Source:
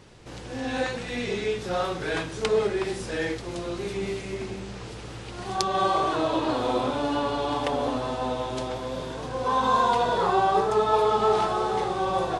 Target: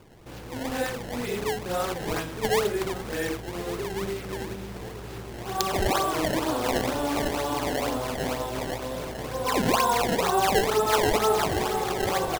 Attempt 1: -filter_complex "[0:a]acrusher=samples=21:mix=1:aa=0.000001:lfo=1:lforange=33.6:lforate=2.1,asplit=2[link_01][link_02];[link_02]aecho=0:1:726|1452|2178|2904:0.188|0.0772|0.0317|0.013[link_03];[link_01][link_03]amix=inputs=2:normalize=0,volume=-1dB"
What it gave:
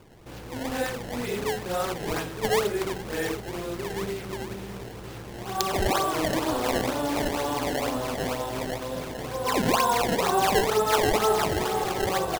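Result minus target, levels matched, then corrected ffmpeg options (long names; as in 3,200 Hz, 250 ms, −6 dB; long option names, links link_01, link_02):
echo 434 ms early
-filter_complex "[0:a]acrusher=samples=21:mix=1:aa=0.000001:lfo=1:lforange=33.6:lforate=2.1,asplit=2[link_01][link_02];[link_02]aecho=0:1:1160|2320|3480|4640:0.188|0.0772|0.0317|0.013[link_03];[link_01][link_03]amix=inputs=2:normalize=0,volume=-1dB"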